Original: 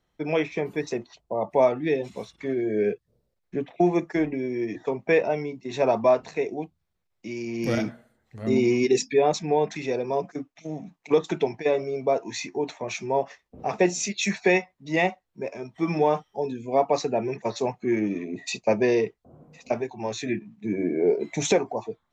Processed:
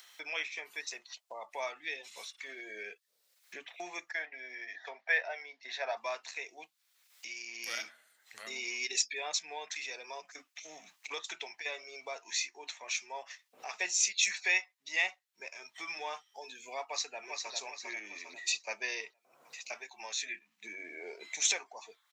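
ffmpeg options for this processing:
ffmpeg -i in.wav -filter_complex "[0:a]asettb=1/sr,asplit=3[link_01][link_02][link_03];[link_01]atrim=end=4.114[link_04];[link_02]atrim=start=4.11:end=5.97,asetpts=PTS-STARTPTS,afade=type=in:duration=0.004:curve=qsin,afade=type=out:start_time=1.856:duration=0.004:curve=qsin,highpass=frequency=220:width=0.5412,highpass=frequency=220:width=1.3066,equalizer=frequency=320:width_type=q:width=4:gain=-10,equalizer=frequency=680:width_type=q:width=4:gain=9,equalizer=frequency=1100:width_type=q:width=4:gain=-5,equalizer=frequency=1700:width_type=q:width=4:gain=9,equalizer=frequency=2700:width_type=q:width=4:gain=-7,lowpass=frequency=4800:width=0.5412,lowpass=frequency=4800:width=1.3066[link_05];[link_03]atrim=start=5.966[link_06];[link_04][link_05]acrossfade=duration=0.004:curve1=hsin:curve2=qsin[link_07];[link_07][link_06]acrossfade=duration=0.004:curve1=qsin:curve2=hsin,asplit=2[link_08][link_09];[link_09]afade=type=in:start_time=16.83:duration=0.01,afade=type=out:start_time=17.53:duration=0.01,aecho=0:1:400|800|1200|1600|2000:0.562341|0.224937|0.0899746|0.0359898|0.0143959[link_10];[link_08][link_10]amix=inputs=2:normalize=0,highpass=1500,highshelf=frequency=2300:gain=8.5,acompressor=mode=upward:threshold=-33dB:ratio=2.5,volume=-6dB" out.wav

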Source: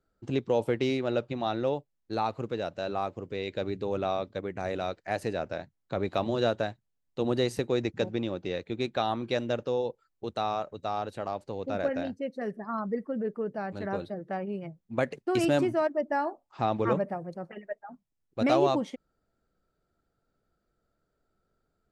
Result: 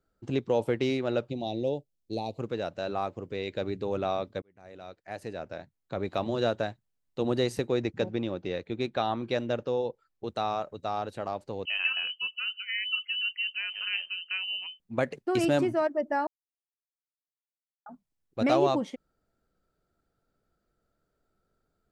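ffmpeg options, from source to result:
ffmpeg -i in.wav -filter_complex "[0:a]asettb=1/sr,asplit=3[link_01][link_02][link_03];[link_01]atrim=end=1.304[link_04];[link_02]atrim=start=1.3:end=2.39,asetpts=PTS-STARTPTS,afade=type=in:duration=0.004:curve=qsin,afade=type=out:start_time=1.086:duration=0.004:curve=qsin,asuperstop=centerf=1400:order=4:qfactor=0.61[link_05];[link_03]atrim=start=2.386[link_06];[link_04][link_05]acrossfade=duration=0.004:curve1=hsin:curve2=qsin[link_07];[link_07][link_06]acrossfade=duration=0.004:curve1=qsin:curve2=hsin,asettb=1/sr,asplit=3[link_08][link_09][link_10];[link_08]atrim=end=7.704[link_11];[link_09]atrim=start=7.7:end=10.29,asetpts=PTS-STARTPTS,afade=type=in:duration=0.004:curve=qsin,afade=type=out:start_time=2.586:duration=0.004:curve=qsin,highshelf=frequency=7900:gain=-9[link_12];[link_10]atrim=start=10.286[link_13];[link_11][link_12]acrossfade=duration=0.004:curve1=hsin:curve2=qsin[link_14];[link_14][link_13]acrossfade=duration=0.004:curve1=qsin:curve2=hsin,asettb=1/sr,asplit=3[link_15][link_16][link_17];[link_15]atrim=end=11.654[link_18];[link_16]atrim=start=11.65:end=14.8,asetpts=PTS-STARTPTS,afade=type=in:duration=0.004:curve=qsin,afade=type=out:start_time=3.146:duration=0.004:curve=qsin,lowpass=frequency=2700:width_type=q:width=0.5098,lowpass=frequency=2700:width_type=q:width=0.6013,lowpass=frequency=2700:width_type=q:width=0.9,lowpass=frequency=2700:width_type=q:width=2.563,afreqshift=-3200[link_19];[link_17]atrim=start=14.796[link_20];[link_18][link_19]acrossfade=duration=0.004:curve1=hsin:curve2=qsin[link_21];[link_21][link_20]acrossfade=duration=0.004:curve1=qsin:curve2=hsin,asplit=4[link_22][link_23][link_24][link_25];[link_22]atrim=end=4.42,asetpts=PTS-STARTPTS,afade=type=out:start_time=4.416:duration=0.004:curve=hsin[link_26];[link_23]atrim=start=4.42:end=16.27,asetpts=PTS-STARTPTS,afade=type=in:duration=2.77:curve=qsin,afade=type=out:start_time=11.846:duration=0.004:curve=hsin[link_27];[link_24]atrim=start=16.27:end=17.86,asetpts=PTS-STARTPTS,volume=0[link_28];[link_25]atrim=start=17.86,asetpts=PTS-STARTPTS,afade=type=in:duration=0.004:curve=hsin[link_29];[link_26][link_27][link_28][link_29]concat=n=4:v=0:a=1" out.wav

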